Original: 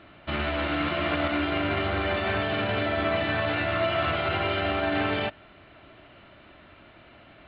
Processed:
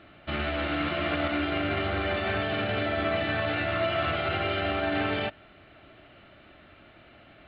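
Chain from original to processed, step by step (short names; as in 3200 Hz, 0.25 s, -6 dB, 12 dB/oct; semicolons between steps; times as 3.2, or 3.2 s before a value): notch 990 Hz, Q 7.6; gain -1.5 dB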